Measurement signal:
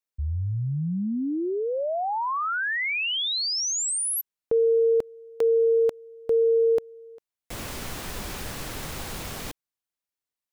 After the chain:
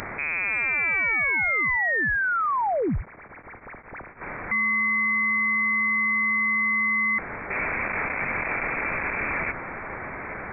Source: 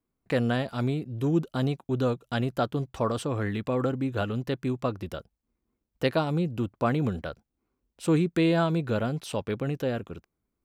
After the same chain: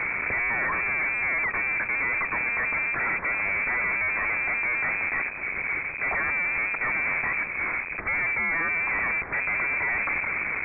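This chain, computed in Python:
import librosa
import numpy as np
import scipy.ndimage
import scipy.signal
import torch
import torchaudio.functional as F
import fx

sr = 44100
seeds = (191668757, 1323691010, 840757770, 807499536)

y = np.sign(x) * np.sqrt(np.mean(np.square(x)))
y = scipy.signal.sosfilt(scipy.signal.butter(2, 120.0, 'highpass', fs=sr, output='sos'), y)
y = fx.freq_invert(y, sr, carrier_hz=2500)
y = F.gain(torch.from_numpy(y), 3.5).numpy()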